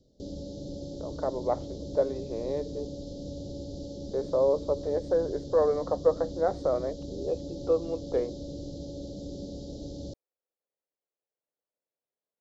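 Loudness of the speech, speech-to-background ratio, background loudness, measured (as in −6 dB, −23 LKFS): −29.5 LKFS, 10.5 dB, −40.0 LKFS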